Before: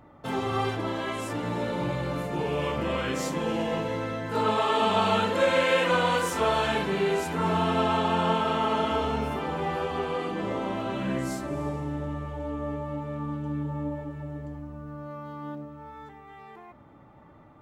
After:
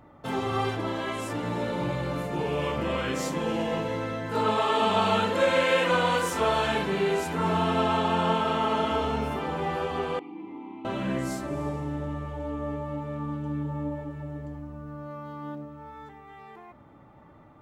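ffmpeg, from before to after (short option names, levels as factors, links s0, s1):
-filter_complex "[0:a]asettb=1/sr,asplit=3[s0][s1][s2];[s0]atrim=end=10.194[s3];[s1]atrim=start=10.19:end=10.85,asetpts=PTS-STARTPTS,afade=t=in:d=0.004:c=qsin,afade=t=out:st=0.656:d=0.004:c=qsin,asplit=3[s4][s5][s6];[s4]bandpass=f=300:t=q:w=8,volume=1[s7];[s5]bandpass=f=870:t=q:w=8,volume=0.501[s8];[s6]bandpass=f=2240:t=q:w=8,volume=0.355[s9];[s7][s8][s9]amix=inputs=3:normalize=0[s10];[s2]atrim=start=10.846[s11];[s3][s10]acrossfade=d=0.004:c1=hsin:c2=qsin[s12];[s12][s11]acrossfade=d=0.004:c1=qsin:c2=hsin"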